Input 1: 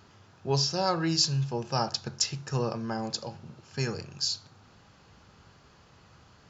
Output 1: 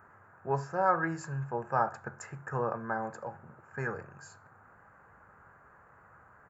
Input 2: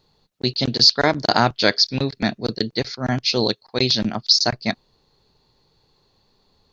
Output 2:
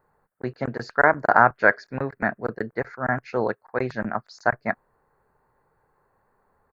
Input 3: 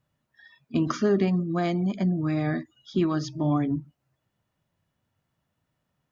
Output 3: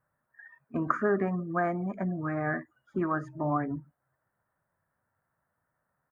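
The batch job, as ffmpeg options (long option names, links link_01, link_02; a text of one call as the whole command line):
ffmpeg -i in.wav -af "firequalizer=gain_entry='entry(300,0);entry(500,7);entry(1600,14);entry(3300,-26);entry(5600,-25);entry(8200,5)':delay=0.05:min_phase=1,volume=-7.5dB" out.wav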